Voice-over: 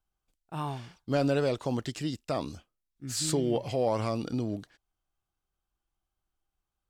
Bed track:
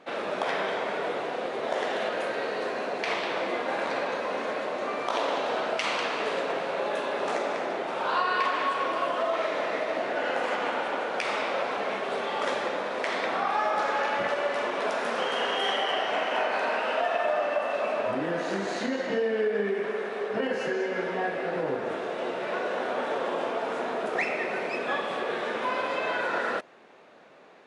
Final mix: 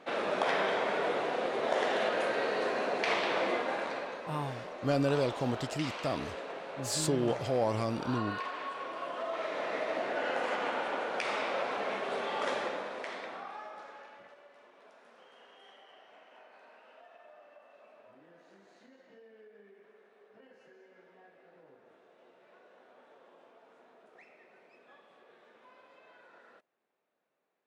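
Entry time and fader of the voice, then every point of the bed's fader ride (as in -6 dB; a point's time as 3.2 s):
3.75 s, -2.0 dB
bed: 3.5 s -1 dB
4.23 s -12 dB
8.91 s -12 dB
9.85 s -4.5 dB
12.6 s -4.5 dB
14.47 s -30 dB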